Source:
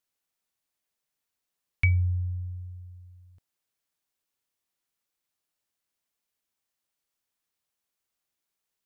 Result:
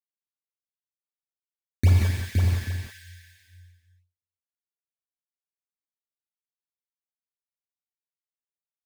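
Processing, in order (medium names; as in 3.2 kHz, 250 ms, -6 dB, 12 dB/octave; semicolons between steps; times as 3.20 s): high-pass 59 Hz 24 dB/octave; gate -47 dBFS, range -36 dB; treble shelf 2.5 kHz -10 dB; decimation with a swept rate 18×, swing 100% 3.5 Hz; on a send: multi-tap echo 181/264/517/609/836 ms -7/-17.5/-4/-10/-14 dB; on the sum: gated-style reverb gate 210 ms flat, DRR -1.5 dB; trim +3 dB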